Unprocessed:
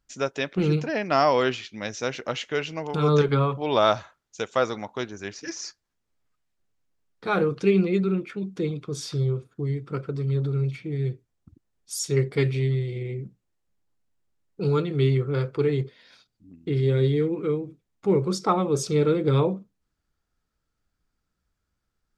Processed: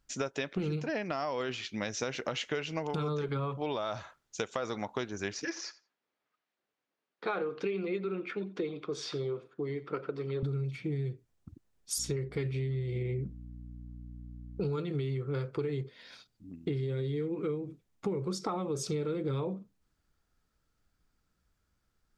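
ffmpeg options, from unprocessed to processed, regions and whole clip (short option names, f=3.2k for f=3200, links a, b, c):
-filter_complex "[0:a]asettb=1/sr,asplit=3[a][b][c];[a]atrim=end=5.454[d];[b]atrim=start=5.45:end=10.43,asetpts=PTS-STARTPTS,afade=t=in:d=0.004:c=qsin,afade=t=out:st=4.976:d=0.004:c=qsin,highpass=340,lowpass=3.7k,aecho=1:1:88|176:0.112|0.0168,atrim=end_sample=219618[e];[c]atrim=start=10.426[f];[d][e]acrossfade=d=0.004:c1=hsin:c2=qsin[g];[g][f]acrossfade=d=0.004:c1=qsin:c2=hsin,asettb=1/sr,asplit=3[h][i][j];[h]atrim=end=11.984[k];[i]atrim=start=11.98:end=14.73,asetpts=PTS-STARTPTS,afade=t=in:d=0.004:c=qsin,afade=t=out:st=2.746:d=0.004:c=qsin,highshelf=f=3.8k:g=-6,aeval=exprs='val(0)+0.00501*(sin(2*PI*60*n/s)+sin(2*PI*2*60*n/s)/2+sin(2*PI*3*60*n/s)/3+sin(2*PI*4*60*n/s)/4+sin(2*PI*5*60*n/s)/5)':c=same[l];[j]atrim=start=14.726[m];[k][l]acrossfade=d=0.004:c1=hsin:c2=qsin[n];[n][m]acrossfade=d=0.004:c1=qsin:c2=hsin,alimiter=limit=-15.5dB:level=0:latency=1:release=27,acompressor=threshold=-32dB:ratio=12,volume=2dB"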